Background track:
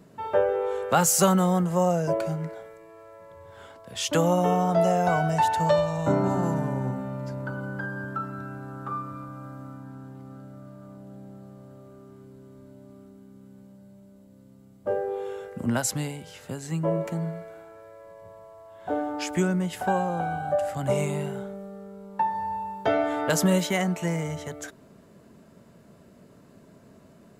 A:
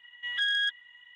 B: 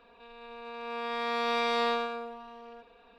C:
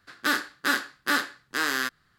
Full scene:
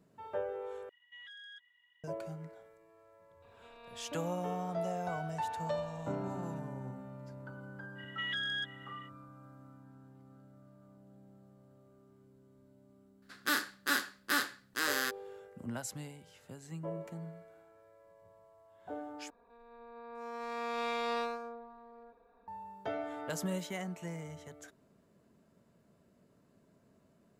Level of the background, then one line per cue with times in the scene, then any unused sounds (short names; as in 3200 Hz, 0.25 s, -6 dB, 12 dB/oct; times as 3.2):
background track -14.5 dB
0.89 replace with A -16 dB + limiter -29 dBFS
3.42 add B -14 dB + negative-ratio compressor -43 dBFS
7.95 add A -0.5 dB, fades 0.05 s + compressor, threshold -33 dBFS
13.22 add C -7.5 dB + high shelf 6600 Hz +7.5 dB
19.3 replace with B -6 dB + Wiener smoothing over 15 samples